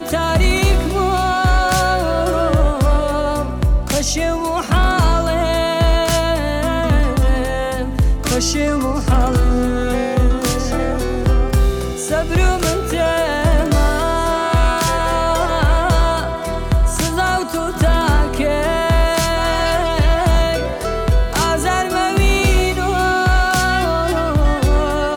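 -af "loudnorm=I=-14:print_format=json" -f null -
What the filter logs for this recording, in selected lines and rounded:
"input_i" : "-16.7",
"input_tp" : "-6.6",
"input_lra" : "1.6",
"input_thresh" : "-26.7",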